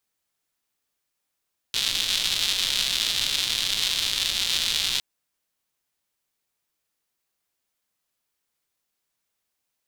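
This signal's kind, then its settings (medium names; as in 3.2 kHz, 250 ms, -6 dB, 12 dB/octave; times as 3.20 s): rain from filtered ticks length 3.26 s, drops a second 270, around 3.6 kHz, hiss -17 dB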